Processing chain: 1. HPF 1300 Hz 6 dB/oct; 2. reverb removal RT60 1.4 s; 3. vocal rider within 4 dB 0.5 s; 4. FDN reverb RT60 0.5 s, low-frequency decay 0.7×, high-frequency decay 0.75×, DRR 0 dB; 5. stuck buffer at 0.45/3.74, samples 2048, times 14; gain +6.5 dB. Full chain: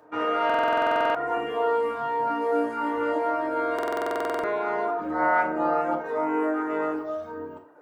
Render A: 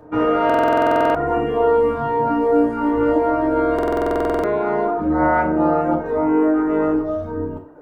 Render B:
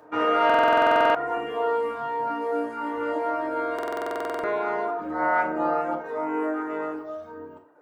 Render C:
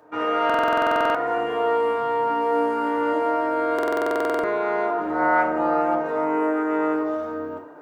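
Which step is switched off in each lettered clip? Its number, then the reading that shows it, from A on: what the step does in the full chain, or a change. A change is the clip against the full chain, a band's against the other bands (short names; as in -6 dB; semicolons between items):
1, 125 Hz band +12.5 dB; 3, crest factor change +2.0 dB; 2, loudness change +3.0 LU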